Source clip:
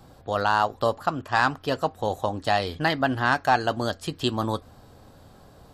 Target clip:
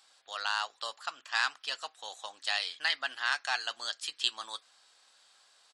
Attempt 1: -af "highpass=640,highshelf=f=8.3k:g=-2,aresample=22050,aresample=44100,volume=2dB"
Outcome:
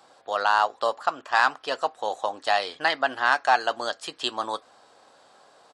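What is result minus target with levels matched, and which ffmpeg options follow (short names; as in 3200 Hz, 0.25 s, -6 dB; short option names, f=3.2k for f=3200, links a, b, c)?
500 Hz band +12.0 dB
-af "highpass=2.4k,highshelf=f=8.3k:g=-2,aresample=22050,aresample=44100,volume=2dB"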